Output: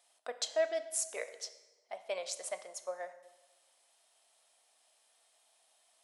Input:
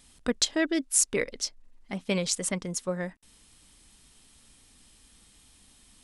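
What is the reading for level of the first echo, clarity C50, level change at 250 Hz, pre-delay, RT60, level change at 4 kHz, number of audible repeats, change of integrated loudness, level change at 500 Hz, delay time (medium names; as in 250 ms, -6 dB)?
no echo, 12.5 dB, -28.5 dB, 3 ms, 1.2 s, -11.5 dB, no echo, -10.0 dB, -4.0 dB, no echo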